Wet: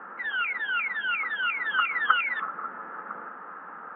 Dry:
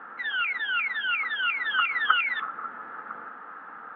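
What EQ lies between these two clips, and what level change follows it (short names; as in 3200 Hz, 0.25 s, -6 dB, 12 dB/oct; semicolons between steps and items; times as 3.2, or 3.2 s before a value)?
air absorption 84 m; speaker cabinet 150–3000 Hz, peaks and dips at 180 Hz +9 dB, 380 Hz +5 dB, 570 Hz +5 dB, 1000 Hz +4 dB; 0.0 dB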